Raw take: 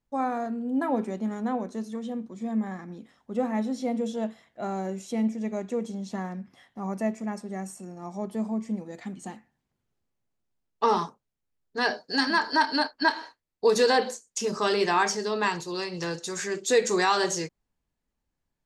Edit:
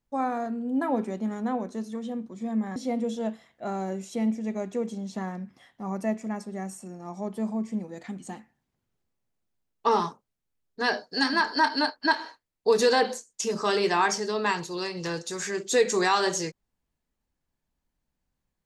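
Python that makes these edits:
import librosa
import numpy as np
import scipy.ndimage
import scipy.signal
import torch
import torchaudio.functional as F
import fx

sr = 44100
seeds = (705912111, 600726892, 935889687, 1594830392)

y = fx.edit(x, sr, fx.cut(start_s=2.76, length_s=0.97), tone=tone)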